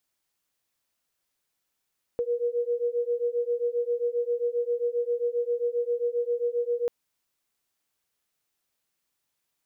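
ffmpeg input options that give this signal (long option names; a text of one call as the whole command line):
ffmpeg -f lavfi -i "aevalsrc='0.0422*(sin(2*PI*475*t)+sin(2*PI*482.5*t))':duration=4.69:sample_rate=44100" out.wav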